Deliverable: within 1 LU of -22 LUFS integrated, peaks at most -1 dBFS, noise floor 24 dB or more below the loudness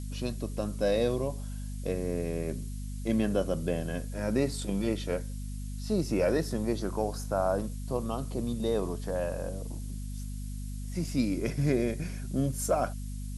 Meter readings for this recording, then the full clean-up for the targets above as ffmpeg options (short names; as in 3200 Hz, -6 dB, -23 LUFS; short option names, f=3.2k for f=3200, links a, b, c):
hum 50 Hz; harmonics up to 250 Hz; hum level -34 dBFS; noise floor -37 dBFS; noise floor target -56 dBFS; loudness -32.0 LUFS; peak -14.5 dBFS; loudness target -22.0 LUFS
-> -af "bandreject=f=50:t=h:w=6,bandreject=f=100:t=h:w=6,bandreject=f=150:t=h:w=6,bandreject=f=200:t=h:w=6,bandreject=f=250:t=h:w=6"
-af "afftdn=nr=19:nf=-37"
-af "volume=10dB"